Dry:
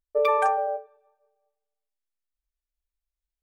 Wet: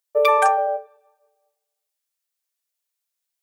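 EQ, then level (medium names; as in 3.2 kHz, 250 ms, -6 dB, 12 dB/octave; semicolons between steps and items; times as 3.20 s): steep high-pass 430 Hz; treble shelf 3.3 kHz +9.5 dB; +5.0 dB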